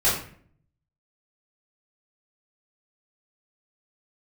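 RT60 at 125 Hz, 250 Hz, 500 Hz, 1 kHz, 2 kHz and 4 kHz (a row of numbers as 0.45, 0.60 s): 1.0, 0.75, 0.60, 0.50, 0.50, 0.35 s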